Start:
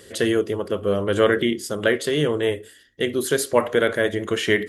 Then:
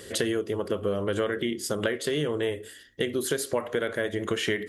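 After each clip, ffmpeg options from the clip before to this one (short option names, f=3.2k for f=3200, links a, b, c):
-af "acompressor=threshold=-27dB:ratio=6,volume=2.5dB"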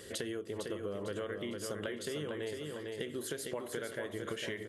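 -af "aecho=1:1:453|906|1359|1812|2265:0.501|0.19|0.0724|0.0275|0.0105,acompressor=threshold=-34dB:ratio=2,volume=-6dB"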